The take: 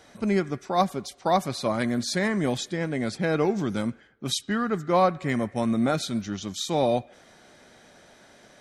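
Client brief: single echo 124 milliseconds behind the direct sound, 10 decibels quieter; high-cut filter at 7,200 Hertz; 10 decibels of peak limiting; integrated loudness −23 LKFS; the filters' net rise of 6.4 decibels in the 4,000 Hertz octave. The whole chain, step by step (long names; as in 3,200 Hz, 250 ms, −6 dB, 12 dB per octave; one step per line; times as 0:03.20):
low-pass filter 7,200 Hz
parametric band 4,000 Hz +7.5 dB
brickwall limiter −17 dBFS
single-tap delay 124 ms −10 dB
level +4.5 dB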